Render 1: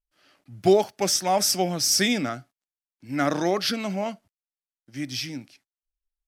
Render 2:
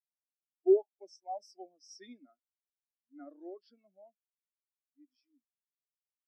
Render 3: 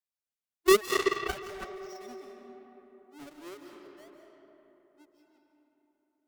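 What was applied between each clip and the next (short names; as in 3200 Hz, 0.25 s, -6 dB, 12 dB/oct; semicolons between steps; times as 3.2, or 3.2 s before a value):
HPF 250 Hz 24 dB/oct; spectral expander 2.5:1; gain -6.5 dB
half-waves squared off; digital reverb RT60 3.8 s, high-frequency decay 0.45×, pre-delay 0.115 s, DRR 2 dB; added harmonics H 7 -12 dB, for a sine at -15 dBFS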